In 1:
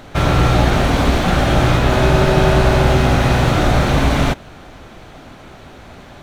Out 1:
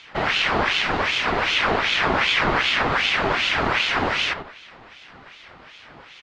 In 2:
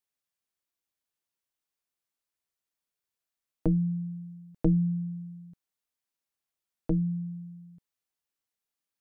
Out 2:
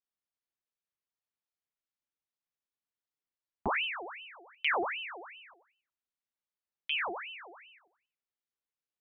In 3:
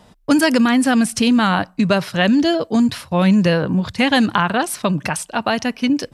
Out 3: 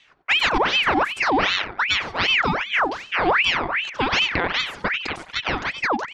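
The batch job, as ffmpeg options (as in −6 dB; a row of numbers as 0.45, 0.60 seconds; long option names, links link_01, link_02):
-filter_complex "[0:a]highpass=130,lowpass=4900,aemphasis=mode=reproduction:type=50kf,asplit=2[link_01][link_02];[link_02]adelay=91,lowpass=frequency=2700:poles=1,volume=-9dB,asplit=2[link_03][link_04];[link_04]adelay=91,lowpass=frequency=2700:poles=1,volume=0.34,asplit=2[link_05][link_06];[link_06]adelay=91,lowpass=frequency=2700:poles=1,volume=0.34,asplit=2[link_07][link_08];[link_08]adelay=91,lowpass=frequency=2700:poles=1,volume=0.34[link_09];[link_03][link_05][link_07][link_09]amix=inputs=4:normalize=0[link_10];[link_01][link_10]amix=inputs=2:normalize=0,aeval=exprs='val(0)*sin(2*PI*1700*n/s+1700*0.7/2.6*sin(2*PI*2.6*n/s))':channel_layout=same,volume=-2.5dB"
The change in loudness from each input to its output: −5.5, −4.0, −3.5 LU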